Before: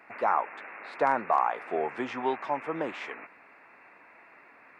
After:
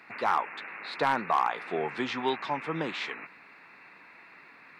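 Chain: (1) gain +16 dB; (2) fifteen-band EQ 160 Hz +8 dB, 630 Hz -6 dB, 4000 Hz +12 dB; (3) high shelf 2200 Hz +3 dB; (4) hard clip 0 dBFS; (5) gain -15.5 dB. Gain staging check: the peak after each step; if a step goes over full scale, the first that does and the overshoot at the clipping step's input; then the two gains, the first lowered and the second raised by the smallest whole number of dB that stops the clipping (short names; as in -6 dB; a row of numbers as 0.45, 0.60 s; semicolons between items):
+4.0, +4.0, +5.0, 0.0, -15.5 dBFS; step 1, 5.0 dB; step 1 +11 dB, step 5 -10.5 dB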